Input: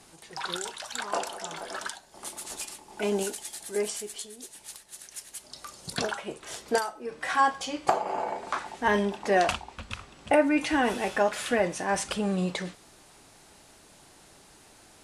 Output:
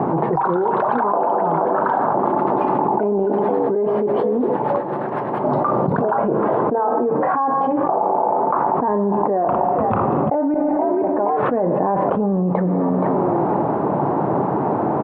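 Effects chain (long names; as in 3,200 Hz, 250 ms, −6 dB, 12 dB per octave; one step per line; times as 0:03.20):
elliptic band-pass filter 130–1,000 Hz, stop band 70 dB
0:10.54–0:11.43: gate with flip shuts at −32 dBFS, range −32 dB
echo with shifted repeats 474 ms, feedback 30%, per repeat +80 Hz, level −23 dB
four-comb reverb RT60 1.4 s, combs from 33 ms, DRR 14.5 dB
envelope flattener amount 100%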